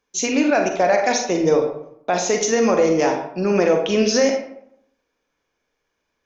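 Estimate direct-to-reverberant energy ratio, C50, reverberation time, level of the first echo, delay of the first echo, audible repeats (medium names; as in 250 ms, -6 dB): 3.5 dB, 5.0 dB, 0.70 s, no echo, no echo, no echo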